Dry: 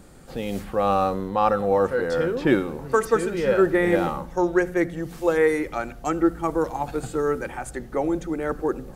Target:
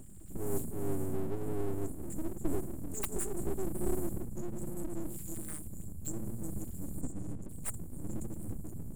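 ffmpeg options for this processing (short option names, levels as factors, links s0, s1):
-filter_complex "[0:a]asplit=3[s0][s1][s2];[s0]afade=t=out:st=7:d=0.02[s3];[s1]adynamicsmooth=sensitivity=6.5:basefreq=3500,afade=t=in:st=7:d=0.02,afade=t=out:st=7.48:d=0.02[s4];[s2]afade=t=in:st=7.48:d=0.02[s5];[s3][s4][s5]amix=inputs=3:normalize=0,afftfilt=real='re*(1-between(b*sr/4096,220,6900))':imag='im*(1-between(b*sr/4096,220,6900))':win_size=4096:overlap=0.75,aeval=exprs='abs(val(0))':c=same,adynamicequalizer=threshold=0.00126:dfrequency=6000:dqfactor=0.7:tfrequency=6000:tqfactor=0.7:attack=5:release=100:ratio=0.375:range=2.5:mode=boostabove:tftype=highshelf,volume=1.19"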